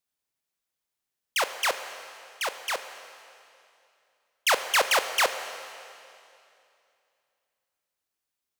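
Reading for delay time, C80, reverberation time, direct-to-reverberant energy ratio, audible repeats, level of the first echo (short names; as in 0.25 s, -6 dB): none, 10.5 dB, 2.6 s, 9.0 dB, none, none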